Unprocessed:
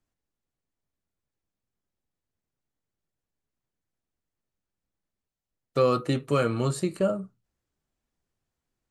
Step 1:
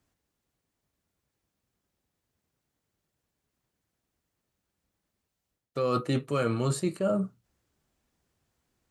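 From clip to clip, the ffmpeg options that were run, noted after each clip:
-af "highpass=41,areverse,acompressor=threshold=0.0251:ratio=10,areverse,volume=2.51"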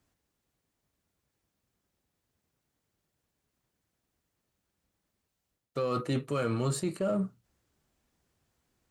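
-filter_complex "[0:a]asplit=2[s0][s1];[s1]asoftclip=type=hard:threshold=0.0188,volume=0.335[s2];[s0][s2]amix=inputs=2:normalize=0,alimiter=limit=0.1:level=0:latency=1:release=37,volume=0.794"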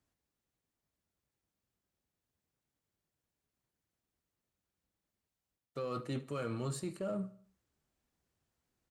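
-af "aecho=1:1:74|148|222|296:0.119|0.0535|0.0241|0.0108,volume=0.398"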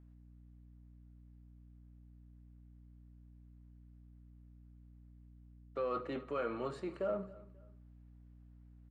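-af "highpass=360,lowpass=2200,aeval=exprs='val(0)+0.000891*(sin(2*PI*60*n/s)+sin(2*PI*2*60*n/s)/2+sin(2*PI*3*60*n/s)/3+sin(2*PI*4*60*n/s)/4+sin(2*PI*5*60*n/s)/5)':c=same,aecho=1:1:268|536:0.0944|0.0293,volume=1.58"

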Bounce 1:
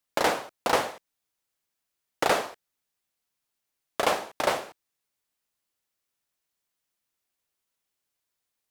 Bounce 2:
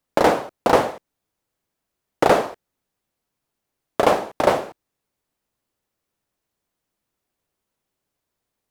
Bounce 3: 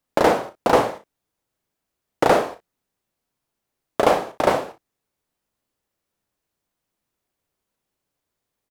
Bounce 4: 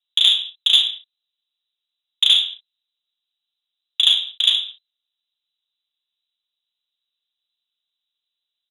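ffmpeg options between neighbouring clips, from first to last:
-af "tiltshelf=f=1100:g=6.5,volume=2"
-af "aecho=1:1:35|59:0.335|0.178,volume=0.891"
-af "lowpass=f=3400:t=q:w=0.5098,lowpass=f=3400:t=q:w=0.6013,lowpass=f=3400:t=q:w=0.9,lowpass=f=3400:t=q:w=2.563,afreqshift=-4000,aexciter=amount=6:drive=6.8:freq=3100,volume=0.299"

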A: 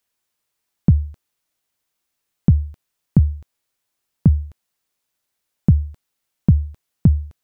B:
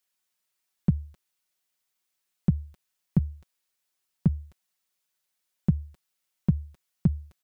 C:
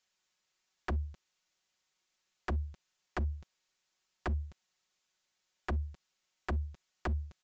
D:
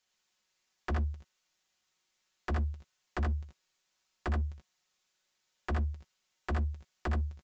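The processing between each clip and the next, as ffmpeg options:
-af "tiltshelf=f=970:g=-3.5,aecho=1:1:5.4:0.53,volume=0.447"
-af "acompressor=threshold=0.1:ratio=10,aresample=16000,aeval=exprs='0.0299*(abs(mod(val(0)/0.0299+3,4)-2)-1)':c=same,aresample=44100,volume=1.41"
-filter_complex "[0:a]asplit=2[s0][s1];[s1]adelay=14,volume=0.251[s2];[s0][s2]amix=inputs=2:normalize=0,aecho=1:1:62|80:0.422|0.668"

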